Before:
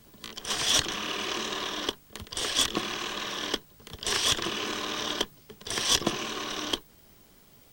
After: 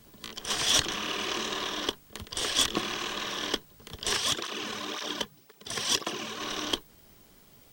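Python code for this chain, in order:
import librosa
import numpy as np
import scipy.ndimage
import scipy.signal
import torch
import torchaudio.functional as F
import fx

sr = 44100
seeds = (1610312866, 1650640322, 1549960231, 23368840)

y = fx.flanger_cancel(x, sr, hz=1.9, depth_ms=3.4, at=(4.15, 6.4), fade=0.02)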